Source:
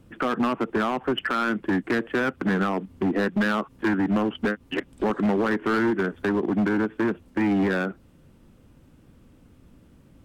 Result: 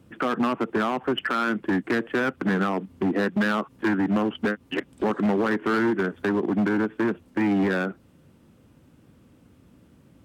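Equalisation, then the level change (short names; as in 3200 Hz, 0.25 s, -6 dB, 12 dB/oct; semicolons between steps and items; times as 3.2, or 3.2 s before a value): HPF 82 Hz; 0.0 dB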